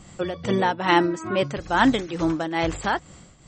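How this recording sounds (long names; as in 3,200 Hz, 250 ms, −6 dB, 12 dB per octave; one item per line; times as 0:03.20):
tremolo triangle 2.3 Hz, depth 75%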